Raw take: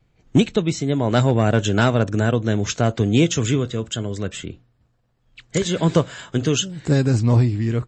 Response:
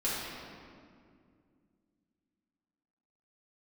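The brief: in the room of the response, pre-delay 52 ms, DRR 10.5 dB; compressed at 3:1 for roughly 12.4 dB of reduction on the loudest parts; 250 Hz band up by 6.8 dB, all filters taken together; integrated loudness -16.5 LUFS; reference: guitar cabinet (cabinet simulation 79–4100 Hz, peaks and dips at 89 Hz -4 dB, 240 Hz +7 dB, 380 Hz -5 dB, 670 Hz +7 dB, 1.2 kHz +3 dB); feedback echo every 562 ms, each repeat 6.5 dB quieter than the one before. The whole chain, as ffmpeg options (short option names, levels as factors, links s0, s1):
-filter_complex "[0:a]equalizer=f=250:t=o:g=4,acompressor=threshold=0.0562:ratio=3,aecho=1:1:562|1124|1686|2248|2810|3372:0.473|0.222|0.105|0.0491|0.0231|0.0109,asplit=2[s0][s1];[1:a]atrim=start_sample=2205,adelay=52[s2];[s1][s2]afir=irnorm=-1:irlink=0,volume=0.119[s3];[s0][s3]amix=inputs=2:normalize=0,highpass=79,equalizer=f=89:t=q:w=4:g=-4,equalizer=f=240:t=q:w=4:g=7,equalizer=f=380:t=q:w=4:g=-5,equalizer=f=670:t=q:w=4:g=7,equalizer=f=1200:t=q:w=4:g=3,lowpass=f=4100:w=0.5412,lowpass=f=4100:w=1.3066,volume=2.66"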